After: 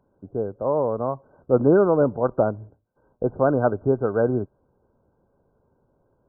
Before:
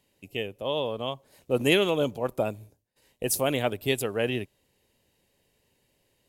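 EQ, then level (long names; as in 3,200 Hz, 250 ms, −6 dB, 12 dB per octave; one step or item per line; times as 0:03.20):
linear-phase brick-wall low-pass 1,600 Hz
+7.0 dB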